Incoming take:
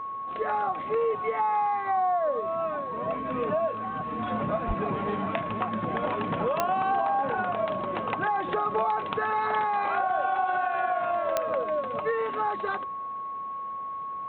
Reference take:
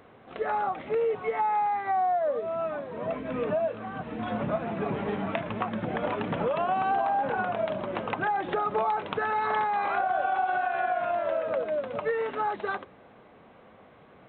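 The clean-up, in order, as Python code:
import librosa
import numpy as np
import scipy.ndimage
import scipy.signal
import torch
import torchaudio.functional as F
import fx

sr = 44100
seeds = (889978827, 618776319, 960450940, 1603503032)

y = fx.fix_declick_ar(x, sr, threshold=10.0)
y = fx.notch(y, sr, hz=1100.0, q=30.0)
y = fx.fix_deplosive(y, sr, at_s=(4.67,))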